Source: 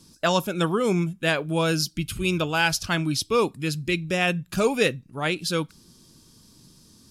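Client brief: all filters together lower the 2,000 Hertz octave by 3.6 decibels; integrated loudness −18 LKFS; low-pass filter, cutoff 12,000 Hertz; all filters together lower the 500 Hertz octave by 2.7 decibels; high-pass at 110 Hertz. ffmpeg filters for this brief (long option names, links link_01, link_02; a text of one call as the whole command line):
ffmpeg -i in.wav -af "highpass=110,lowpass=12000,equalizer=frequency=500:width_type=o:gain=-3,equalizer=frequency=2000:width_type=o:gain=-5,volume=8.5dB" out.wav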